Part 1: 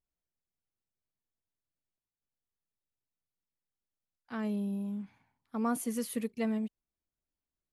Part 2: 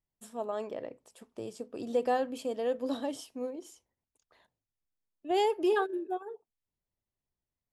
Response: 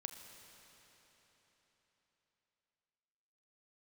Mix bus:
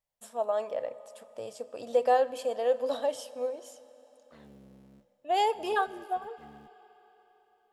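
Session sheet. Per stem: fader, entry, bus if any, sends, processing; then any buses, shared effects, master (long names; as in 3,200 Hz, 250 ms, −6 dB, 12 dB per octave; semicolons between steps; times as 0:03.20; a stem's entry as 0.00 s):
−14.0 dB, 0.00 s, send −16.5 dB, sub-harmonics by changed cycles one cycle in 3, muted; sample-and-hold tremolo 1.4 Hz, depth 80%; tube saturation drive 33 dB, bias 0.55
−0.5 dB, 0.00 s, send −4.5 dB, low shelf with overshoot 440 Hz −7.5 dB, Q 3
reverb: on, RT60 4.2 s, pre-delay 31 ms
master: no processing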